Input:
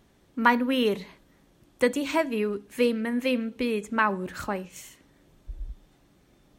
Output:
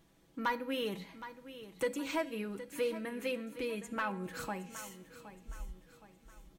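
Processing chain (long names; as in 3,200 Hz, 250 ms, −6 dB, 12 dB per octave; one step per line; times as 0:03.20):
high-shelf EQ 8,400 Hz +5 dB
comb filter 6.1 ms, depth 61%
in parallel at +2 dB: downward compressor, threshold −31 dBFS, peak gain reduction 17 dB
on the sum: tuned comb filter 270 Hz, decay 0.91 s, mix 60%
soft clipping −17 dBFS, distortion −19 dB
on a send: repeating echo 767 ms, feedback 42%, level −13.5 dB
on the sum: level −6.5 dB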